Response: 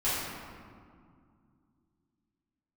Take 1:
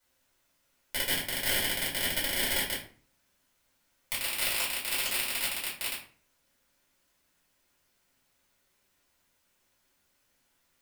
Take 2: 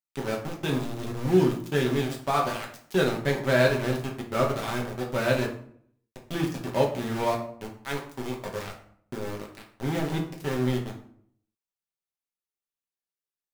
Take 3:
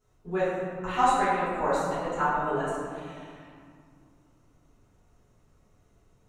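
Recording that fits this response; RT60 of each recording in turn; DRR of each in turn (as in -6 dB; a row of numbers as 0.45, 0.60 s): 3; 0.45, 0.60, 2.2 s; -8.0, -0.5, -13.0 dB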